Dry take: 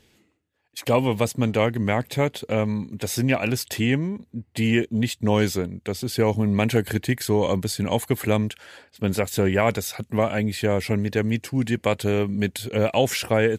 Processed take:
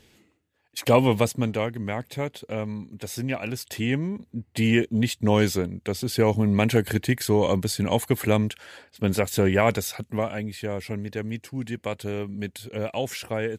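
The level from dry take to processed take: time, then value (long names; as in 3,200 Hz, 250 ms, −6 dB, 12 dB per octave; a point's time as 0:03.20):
0:01.13 +2 dB
0:01.70 −7 dB
0:03.57 −7 dB
0:04.23 0 dB
0:09.82 0 dB
0:10.48 −8 dB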